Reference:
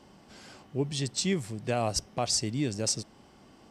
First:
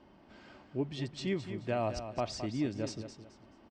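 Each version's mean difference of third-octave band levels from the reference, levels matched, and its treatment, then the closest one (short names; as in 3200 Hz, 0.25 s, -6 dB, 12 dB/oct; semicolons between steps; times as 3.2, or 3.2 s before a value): 5.0 dB: LPF 2800 Hz 12 dB/oct; comb 3.2 ms, depth 33%; feedback echo 0.215 s, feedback 29%, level -10 dB; gain -4 dB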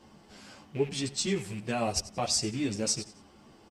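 3.0 dB: rattling part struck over -35 dBFS, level -35 dBFS; feedback echo 90 ms, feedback 36%, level -17 dB; ensemble effect; gain +2.5 dB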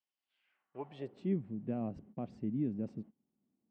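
14.5 dB: gate -43 dBFS, range -22 dB; resonant high shelf 3900 Hz -12 dB, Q 1.5; band-pass sweep 5600 Hz -> 220 Hz, 0.15–1.37; gain +1 dB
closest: second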